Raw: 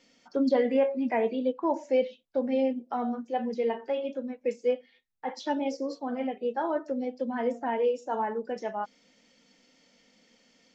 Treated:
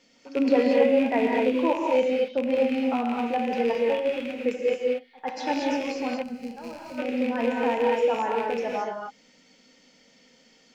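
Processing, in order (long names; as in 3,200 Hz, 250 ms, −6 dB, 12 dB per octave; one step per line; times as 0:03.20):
loose part that buzzes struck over −43 dBFS, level −26 dBFS
echo ahead of the sound 101 ms −20.5 dB
reverb whose tail is shaped and stops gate 260 ms rising, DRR −1.5 dB
gain on a spectral selection 0:06.23–0:06.98, 240–4,000 Hz −15 dB
level +1.5 dB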